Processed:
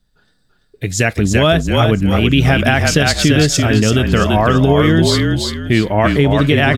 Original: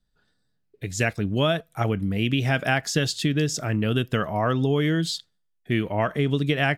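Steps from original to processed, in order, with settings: on a send: frequency-shifting echo 337 ms, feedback 35%, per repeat -34 Hz, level -4 dB; on the sum: loudness maximiser +12 dB; trim -1 dB

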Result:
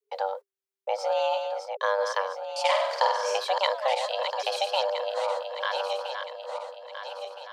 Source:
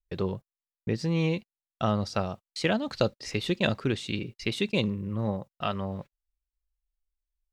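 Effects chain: backward echo that repeats 659 ms, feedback 63%, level -6 dB; 2.60–3.38 s: flutter echo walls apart 8.4 m, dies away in 0.73 s; frequency shift +390 Hz

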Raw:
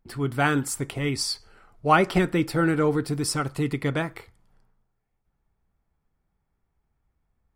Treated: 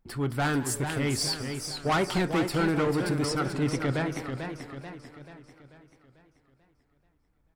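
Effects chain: 3.25–4.17 s: Bessel low-pass 5 kHz, order 2; saturation -21.5 dBFS, distortion -9 dB; frequency-shifting echo 206 ms, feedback 32%, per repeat +140 Hz, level -16.5 dB; modulated delay 439 ms, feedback 49%, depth 127 cents, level -7 dB

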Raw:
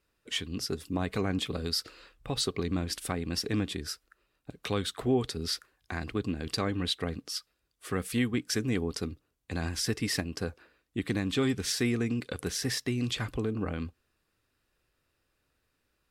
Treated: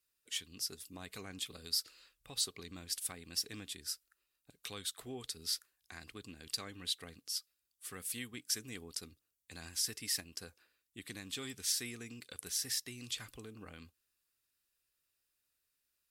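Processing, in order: pre-emphasis filter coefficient 0.9

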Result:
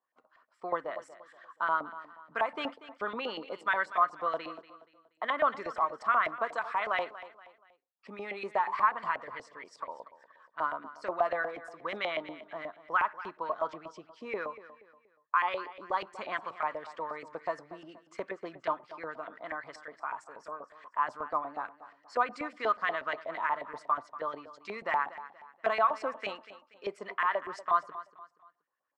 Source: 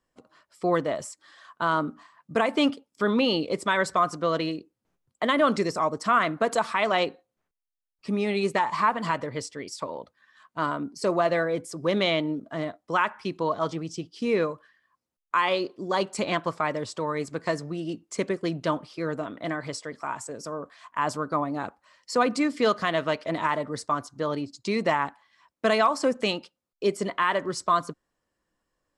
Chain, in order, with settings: LFO band-pass saw up 8.3 Hz 700–2100 Hz; on a send: feedback delay 238 ms, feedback 37%, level -15.5 dB

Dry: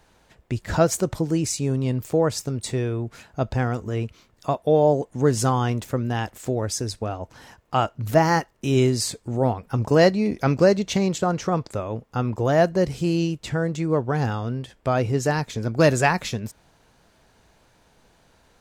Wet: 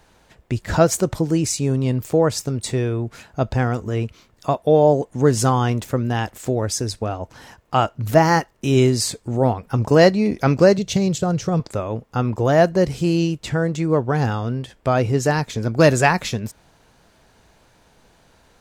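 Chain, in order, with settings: 10.78–11.60 s: graphic EQ 125/250/1000/2000 Hz +9/-6/-8/-5 dB; trim +3.5 dB

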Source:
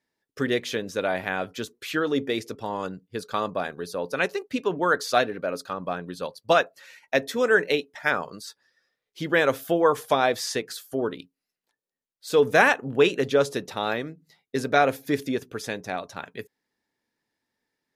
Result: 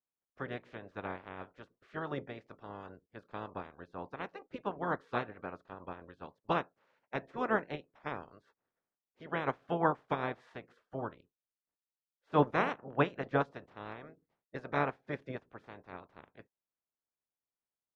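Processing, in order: spectral peaks clipped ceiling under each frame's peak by 23 dB; low-pass 1.2 kHz 12 dB/octave; upward expansion 1.5:1, over -33 dBFS; trim -5.5 dB

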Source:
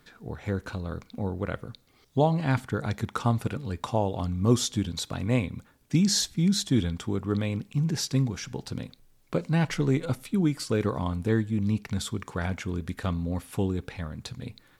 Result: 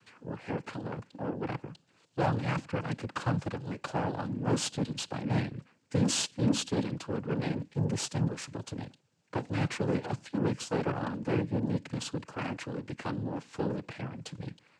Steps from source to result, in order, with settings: saturation -18.5 dBFS, distortion -15 dB; Chebyshev shaper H 2 -7 dB, 6 -23 dB, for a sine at -18.5 dBFS; noise-vocoded speech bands 8; trim -3.5 dB

